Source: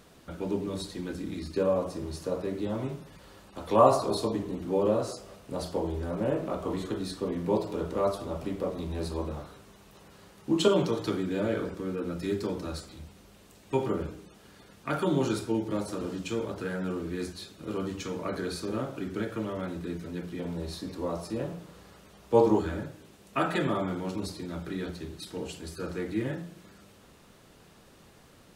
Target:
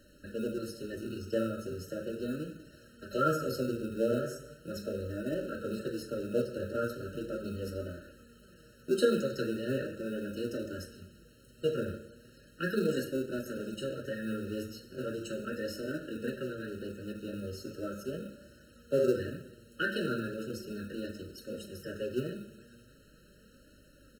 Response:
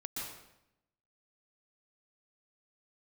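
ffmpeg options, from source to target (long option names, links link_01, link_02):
-filter_complex "[0:a]asplit=2[link_01][link_02];[1:a]atrim=start_sample=2205[link_03];[link_02][link_03]afir=irnorm=-1:irlink=0,volume=-13dB[link_04];[link_01][link_04]amix=inputs=2:normalize=0,flanger=delay=3.9:depth=6.7:regen=45:speed=0.32:shape=sinusoidal,asetrate=52038,aresample=44100,aeval=exprs='val(0)+0.000562*(sin(2*PI*50*n/s)+sin(2*PI*2*50*n/s)/2+sin(2*PI*3*50*n/s)/3+sin(2*PI*4*50*n/s)/4+sin(2*PI*5*50*n/s)/5)':channel_layout=same,acrossover=split=280[link_05][link_06];[link_05]acrusher=samples=37:mix=1:aa=0.000001[link_07];[link_07][link_06]amix=inputs=2:normalize=0,afftfilt=real='re*eq(mod(floor(b*sr/1024/630),2),0)':imag='im*eq(mod(floor(b*sr/1024/630),2),0)':win_size=1024:overlap=0.75"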